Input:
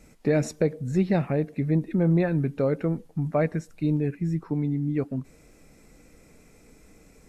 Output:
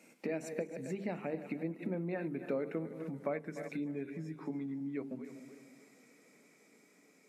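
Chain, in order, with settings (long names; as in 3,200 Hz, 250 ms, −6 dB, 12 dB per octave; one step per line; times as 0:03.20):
feedback delay that plays each chunk backwards 142 ms, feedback 63%, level −14 dB
source passing by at 0:02.54, 16 m/s, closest 11 metres
dynamic equaliser 4,900 Hz, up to −5 dB, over −56 dBFS, Q 0.93
downward compressor 6 to 1, threshold −40 dBFS, peak gain reduction 19.5 dB
high-pass filter 200 Hz 24 dB per octave
parametric band 2,300 Hz +6 dB 0.41 octaves
mains-hum notches 50/100/150/200/250/300/350/400/450 Hz
every ending faded ahead of time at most 330 dB per second
level +7 dB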